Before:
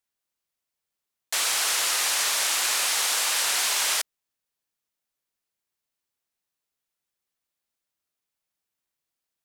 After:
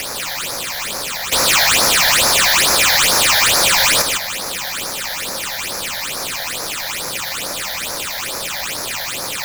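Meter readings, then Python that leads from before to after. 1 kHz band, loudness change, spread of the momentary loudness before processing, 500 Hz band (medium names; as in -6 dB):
+14.0 dB, +7.0 dB, 4 LU, +18.5 dB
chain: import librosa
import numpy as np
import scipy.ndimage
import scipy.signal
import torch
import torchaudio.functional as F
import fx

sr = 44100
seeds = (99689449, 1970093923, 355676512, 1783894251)

p1 = fx.bin_compress(x, sr, power=0.4)
p2 = fx.bass_treble(p1, sr, bass_db=6, treble_db=-6)
p3 = fx.leveller(p2, sr, passes=5)
p4 = fx.over_compress(p3, sr, threshold_db=-19.0, ratio=-0.5)
p5 = p3 + F.gain(torch.from_numpy(p4), 2.0).numpy()
p6 = 10.0 ** (-11.0 / 20.0) * np.tanh(p5 / 10.0 ** (-11.0 / 20.0))
p7 = p6 + fx.echo_single(p6, sr, ms=156, db=-5.0, dry=0)
p8 = fx.phaser_stages(p7, sr, stages=8, low_hz=340.0, high_hz=3000.0, hz=2.3, feedback_pct=25)
p9 = fx.small_body(p8, sr, hz=(540.0, 2400.0), ring_ms=45, db=7)
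y = F.gain(torch.from_numpy(p9), 2.0).numpy()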